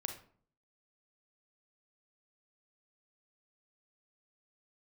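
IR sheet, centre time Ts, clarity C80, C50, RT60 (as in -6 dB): 17 ms, 13.0 dB, 8.0 dB, 0.50 s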